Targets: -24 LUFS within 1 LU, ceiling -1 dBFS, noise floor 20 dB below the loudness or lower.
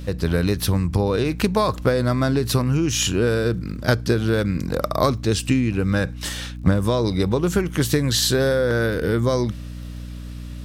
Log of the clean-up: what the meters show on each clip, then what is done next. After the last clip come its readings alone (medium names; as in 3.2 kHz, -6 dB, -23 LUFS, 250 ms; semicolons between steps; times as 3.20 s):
tick rate 22 per s; hum 60 Hz; highest harmonic 300 Hz; hum level -30 dBFS; loudness -21.0 LUFS; peak level -4.0 dBFS; loudness target -24.0 LUFS
-> de-click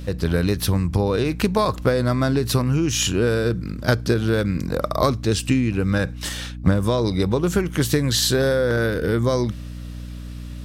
tick rate 0.094 per s; hum 60 Hz; highest harmonic 300 Hz; hum level -30 dBFS
-> hum notches 60/120/180/240/300 Hz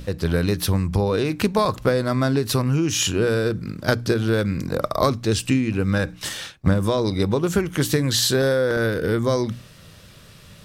hum not found; loudness -21.5 LUFS; peak level -4.5 dBFS; loudness target -24.0 LUFS
-> trim -2.5 dB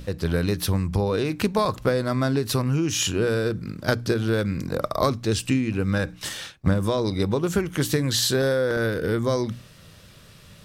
loudness -24.0 LUFS; peak level -7.0 dBFS; noise floor -49 dBFS